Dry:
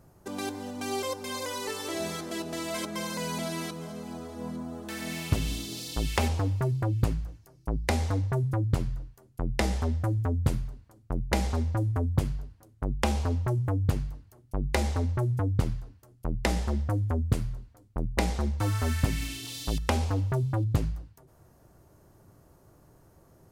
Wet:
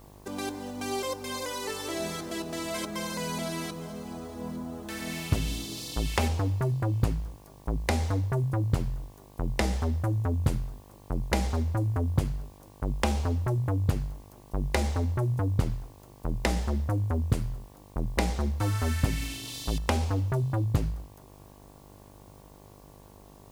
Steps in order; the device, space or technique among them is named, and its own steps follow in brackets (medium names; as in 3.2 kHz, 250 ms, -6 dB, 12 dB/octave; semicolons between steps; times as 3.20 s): video cassette with head-switching buzz (mains buzz 50 Hz, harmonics 23, -53 dBFS -3 dB/octave; white noise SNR 33 dB)